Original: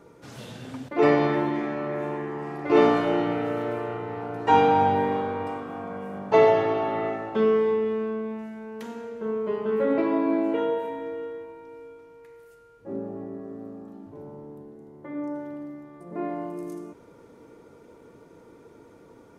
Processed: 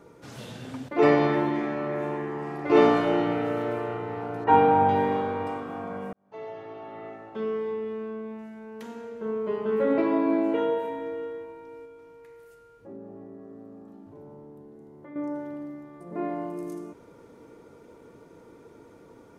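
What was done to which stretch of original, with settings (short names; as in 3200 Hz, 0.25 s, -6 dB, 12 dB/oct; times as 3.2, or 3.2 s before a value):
4.44–4.89 LPF 2000 Hz
6.13–9.96 fade in
11.85–15.16 compressor 2:1, threshold -46 dBFS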